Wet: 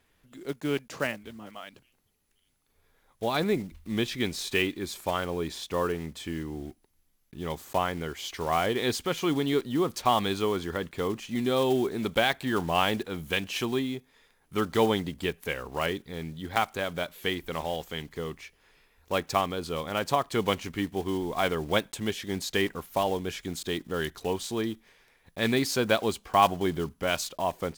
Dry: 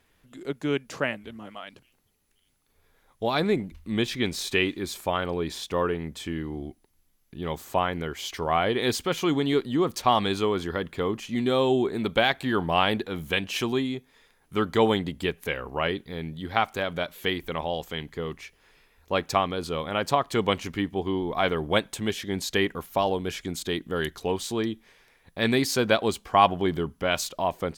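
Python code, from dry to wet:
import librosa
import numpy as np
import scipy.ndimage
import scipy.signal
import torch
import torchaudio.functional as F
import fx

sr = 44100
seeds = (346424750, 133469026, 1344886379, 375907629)

y = fx.block_float(x, sr, bits=5)
y = F.gain(torch.from_numpy(y), -2.5).numpy()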